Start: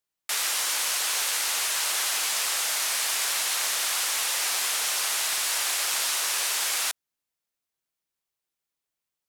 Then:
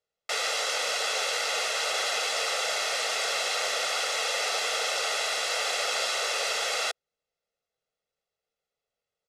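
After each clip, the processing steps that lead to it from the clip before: low-pass 5.2 kHz 12 dB/octave; peaking EQ 450 Hz +15 dB 0.82 oct; comb 1.5 ms, depth 69%; trim -1 dB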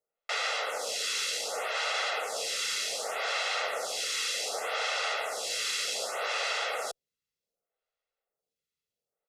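lamp-driven phase shifter 0.66 Hz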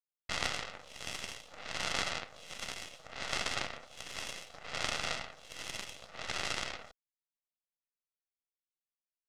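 cabinet simulation 330–5000 Hz, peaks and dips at 380 Hz -9 dB, 2 kHz +4 dB, 3 kHz +6 dB, 4.5 kHz -8 dB; Chebyshev shaper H 3 -10 dB, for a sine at -17 dBFS; half-wave rectifier; trim +7 dB

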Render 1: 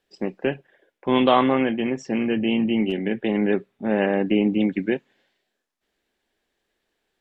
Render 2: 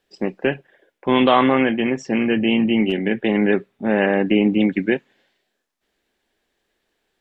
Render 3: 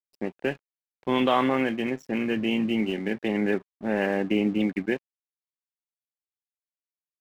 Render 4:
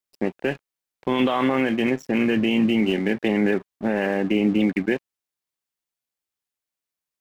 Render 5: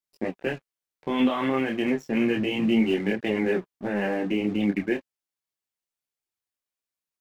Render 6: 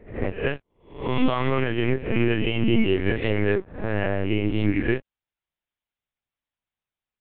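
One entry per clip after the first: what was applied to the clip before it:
dynamic bell 1.8 kHz, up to +4 dB, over -37 dBFS, Q 1; in parallel at -2 dB: peak limiter -11 dBFS, peak gain reduction 8.5 dB; on the sum: trim -1.5 dB
crossover distortion -39 dBFS; trim -7 dB
peak limiter -19 dBFS, peak gain reduction 10 dB; trim +7.5 dB
detune thickener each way 11 cents
reverse spectral sustain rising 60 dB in 0.46 s; LPC vocoder at 8 kHz pitch kept; trim +2 dB

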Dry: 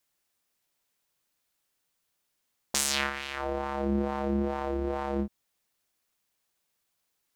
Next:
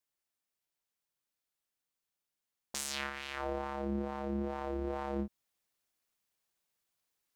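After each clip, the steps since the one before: gain riding 0.5 s; trim -7 dB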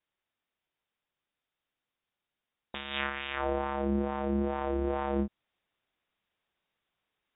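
brick-wall FIR low-pass 3.8 kHz; trim +6 dB

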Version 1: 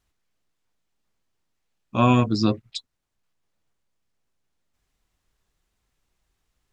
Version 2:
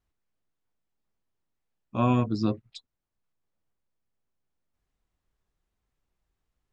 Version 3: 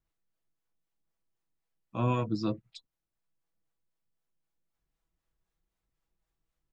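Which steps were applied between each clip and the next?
treble shelf 2 kHz -8.5 dB; trim -5 dB
comb 6.1 ms, depth 43%; harmonic tremolo 3.9 Hz, depth 50%, crossover 440 Hz; trim -2 dB

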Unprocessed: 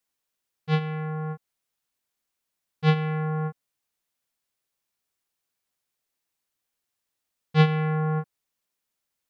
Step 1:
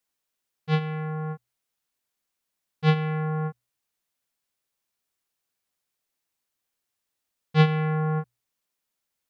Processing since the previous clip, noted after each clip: hum notches 60/120 Hz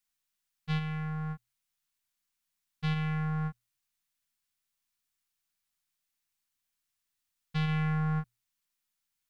partial rectifier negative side -3 dB; peak limiter -19.5 dBFS, peak gain reduction 11 dB; peaking EQ 480 Hz -14.5 dB 1.4 oct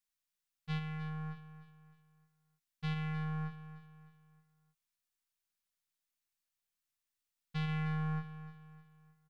feedback delay 307 ms, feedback 39%, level -13 dB; trim -6 dB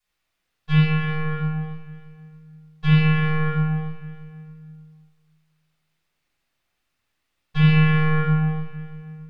reverberation RT60 1.5 s, pre-delay 3 ms, DRR -13 dB

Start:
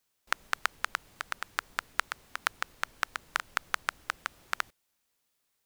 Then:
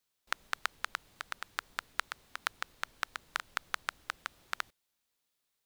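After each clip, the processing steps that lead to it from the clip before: peaking EQ 3.8 kHz +3.5 dB 0.61 oct; trim -5 dB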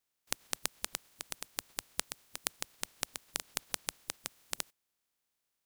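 spectral peaks clipped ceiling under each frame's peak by 26 dB; trim -1.5 dB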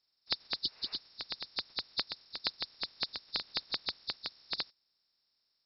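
knee-point frequency compression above 3.5 kHz 4:1; spectral replace 0.65–0.94 s, 390–2900 Hz both

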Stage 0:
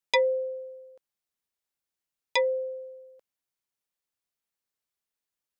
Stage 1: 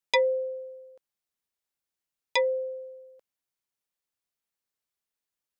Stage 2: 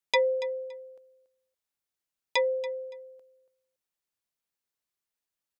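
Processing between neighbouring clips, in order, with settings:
no audible change
feedback delay 283 ms, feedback 19%, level -16 dB; trim -1 dB

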